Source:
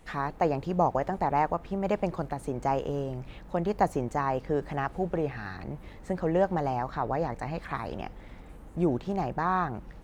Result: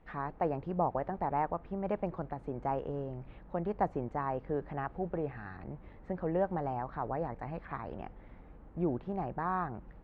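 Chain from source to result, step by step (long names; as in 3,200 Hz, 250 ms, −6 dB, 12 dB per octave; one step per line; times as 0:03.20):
low-pass filter 1,900 Hz 12 dB per octave
level −6 dB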